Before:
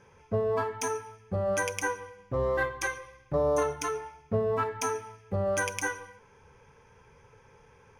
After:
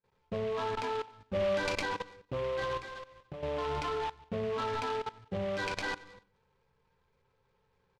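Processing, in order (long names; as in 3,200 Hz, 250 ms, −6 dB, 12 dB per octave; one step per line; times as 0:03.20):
downward expander −44 dBFS
parametric band 92 Hz −7 dB 0.3 octaves
convolution reverb RT60 0.35 s, pre-delay 5 ms, DRR 4.5 dB
output level in coarse steps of 20 dB
0:01.20–0:01.83: comb filter 3.4 ms, depth 97%
repeating echo 96 ms, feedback 48%, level −22 dB
0:02.77–0:03.43: downward compressor 6 to 1, threshold −48 dBFS, peak gain reduction 10.5 dB
downsampling to 8,000 Hz
short delay modulated by noise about 1,900 Hz, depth 0.047 ms
level +6.5 dB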